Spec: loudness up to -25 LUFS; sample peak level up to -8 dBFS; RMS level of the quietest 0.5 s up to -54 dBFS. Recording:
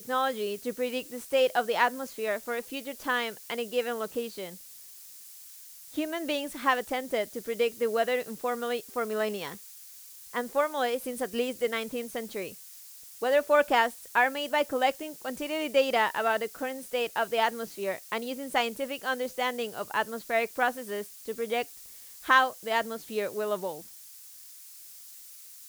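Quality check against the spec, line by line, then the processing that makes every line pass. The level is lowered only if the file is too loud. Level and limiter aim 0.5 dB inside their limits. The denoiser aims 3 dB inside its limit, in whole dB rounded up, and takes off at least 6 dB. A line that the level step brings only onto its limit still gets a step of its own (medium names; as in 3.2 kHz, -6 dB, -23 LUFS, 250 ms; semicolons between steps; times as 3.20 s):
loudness -29.5 LUFS: pass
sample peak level -9.0 dBFS: pass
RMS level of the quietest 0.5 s -49 dBFS: fail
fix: noise reduction 8 dB, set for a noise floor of -49 dBFS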